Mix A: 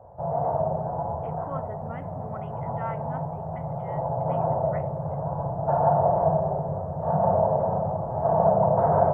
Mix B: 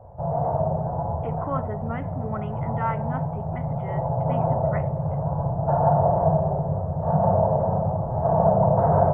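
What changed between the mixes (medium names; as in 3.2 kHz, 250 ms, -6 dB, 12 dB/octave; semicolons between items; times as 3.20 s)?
speech +7.0 dB; master: add bass shelf 160 Hz +10 dB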